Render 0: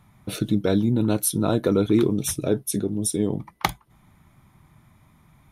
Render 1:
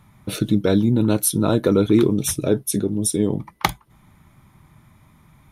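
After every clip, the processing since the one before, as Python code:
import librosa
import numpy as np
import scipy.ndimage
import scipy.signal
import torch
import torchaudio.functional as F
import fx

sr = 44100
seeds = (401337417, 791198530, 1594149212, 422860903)

y = fx.notch(x, sr, hz=710.0, q=12.0)
y = y * librosa.db_to_amplitude(3.5)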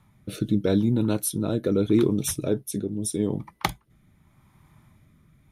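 y = fx.rotary(x, sr, hz=0.8)
y = y * librosa.db_to_amplitude(-4.0)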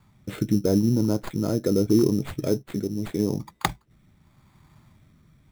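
y = fx.tracing_dist(x, sr, depth_ms=0.03)
y = fx.env_lowpass_down(y, sr, base_hz=990.0, full_db=-19.0)
y = fx.sample_hold(y, sr, seeds[0], rate_hz=5700.0, jitter_pct=0)
y = y * librosa.db_to_amplitude(1.0)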